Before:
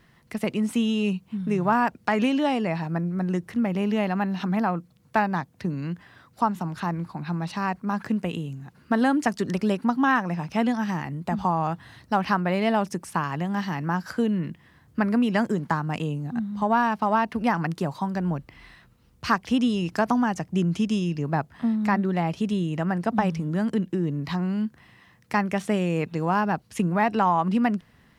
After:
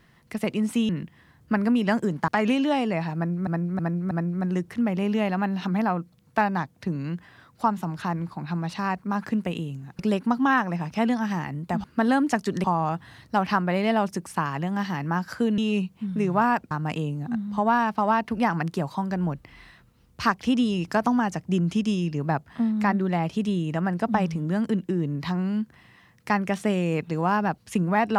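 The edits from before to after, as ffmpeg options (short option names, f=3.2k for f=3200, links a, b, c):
-filter_complex "[0:a]asplit=11[a][b][c][d][e][f][g][h][i][j][k];[a]atrim=end=0.892[l];[b]atrim=start=14.358:end=15.752[m];[c]atrim=start=2.018:end=3.212[n];[d]atrim=start=2.888:end=3.212[o];[e]atrim=start=2.888:end=3.212[p];[f]atrim=start=2.888:end=8.772[q];[g]atrim=start=9.568:end=11.422[r];[h]atrim=start=8.768:end=9.572[s];[i]atrim=start=11.418:end=14.362[t];[j]atrim=start=0.888:end=2.022[u];[k]atrim=start=15.748[v];[l][m]acrossfade=d=0.004:c1=hsin:c2=hsin[w];[w][n]acrossfade=d=0.004:c1=hsin:c2=hsin[x];[x][o]acrossfade=d=0.004:c1=hsin:c2=hsin[y];[y][p]acrossfade=d=0.004:c1=hsin:c2=hsin[z];[z][q]acrossfade=d=0.004:c1=hsin:c2=hsin[aa];[aa][r]acrossfade=d=0.004:c1=hsin:c2=hsin[ab];[ab][s]acrossfade=d=0.004:c1=hsin:c2=hsin[ac];[ac][t]acrossfade=d=0.004:c1=hsin:c2=hsin[ad];[ad][u]acrossfade=d=0.004:c1=hsin:c2=hsin[ae];[ae][v]acrossfade=d=0.004:c1=hsin:c2=hsin"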